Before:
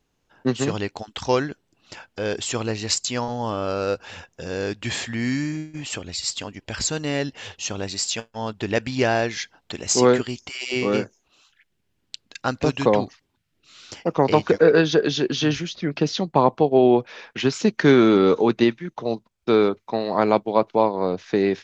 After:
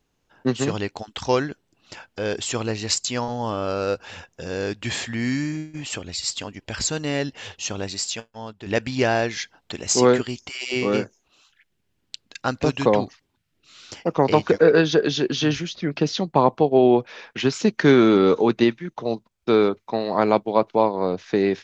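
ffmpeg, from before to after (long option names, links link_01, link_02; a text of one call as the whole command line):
ffmpeg -i in.wav -filter_complex "[0:a]asplit=2[link_01][link_02];[link_01]atrim=end=8.66,asetpts=PTS-STARTPTS,afade=type=out:start_time=7.82:duration=0.84:silence=0.266073[link_03];[link_02]atrim=start=8.66,asetpts=PTS-STARTPTS,afade=type=in:duration=0.004:curve=hsin:silence=0.266073[link_04];[link_03][link_04]concat=n=2:v=0:a=1" out.wav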